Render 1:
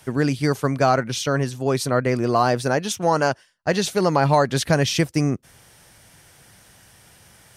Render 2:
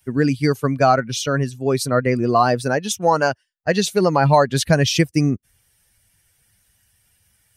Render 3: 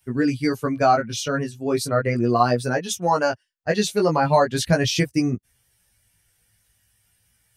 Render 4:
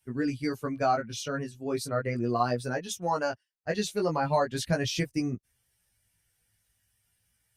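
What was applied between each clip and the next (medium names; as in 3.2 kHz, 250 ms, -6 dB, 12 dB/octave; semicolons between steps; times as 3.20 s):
expander on every frequency bin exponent 1.5; trim +5 dB
chorus 0.38 Hz, delay 16.5 ms, depth 2.2 ms
trim -8.5 dB; Opus 64 kbps 48 kHz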